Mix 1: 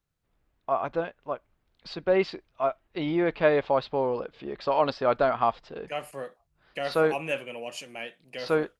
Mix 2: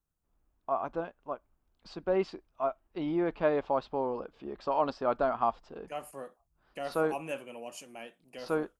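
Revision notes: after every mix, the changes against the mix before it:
master: add graphic EQ 125/500/2000/4000 Hz -9/-6/-10/-10 dB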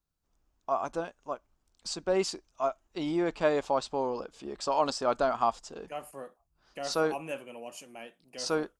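first voice: remove air absorption 360 m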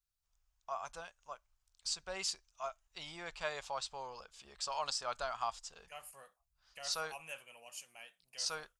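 master: add passive tone stack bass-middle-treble 10-0-10

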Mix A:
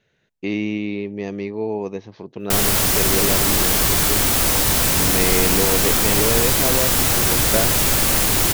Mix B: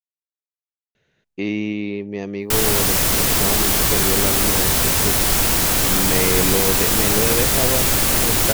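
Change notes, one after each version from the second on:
speech: entry +0.95 s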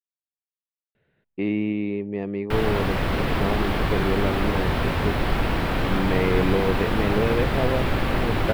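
master: add air absorption 450 m

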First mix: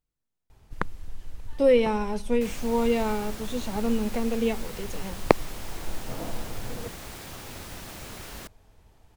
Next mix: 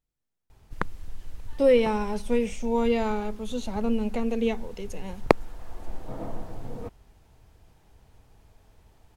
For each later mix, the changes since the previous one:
second sound: muted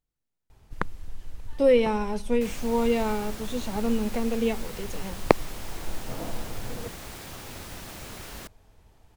second sound: unmuted

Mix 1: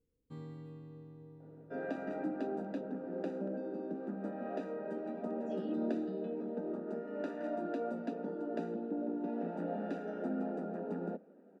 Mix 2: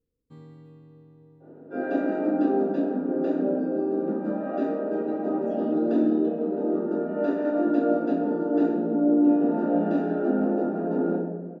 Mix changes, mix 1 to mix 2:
second sound -10.0 dB; reverb: on, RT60 1.2 s

